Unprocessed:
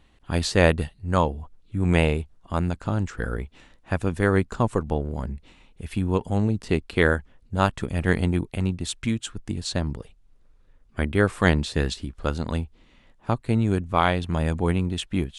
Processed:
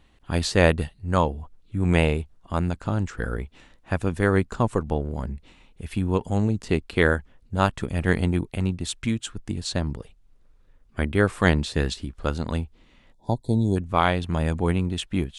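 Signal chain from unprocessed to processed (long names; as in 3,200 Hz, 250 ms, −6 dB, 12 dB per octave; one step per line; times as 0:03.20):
0:06.26–0:06.66: parametric band 6,900 Hz +6.5 dB 0.27 octaves
0:13.13–0:13.76: gain on a spectral selection 1,000–3,300 Hz −28 dB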